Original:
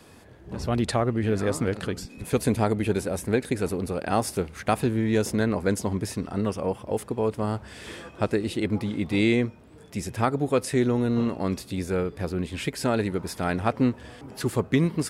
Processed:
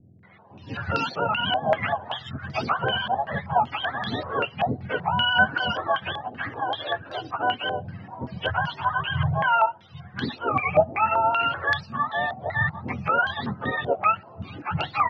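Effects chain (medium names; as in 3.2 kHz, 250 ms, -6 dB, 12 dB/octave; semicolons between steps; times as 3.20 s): spectrum inverted on a logarithmic axis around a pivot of 570 Hz; bands offset in time lows, highs 230 ms, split 340 Hz; step-sequenced low-pass 5.2 Hz 700–4500 Hz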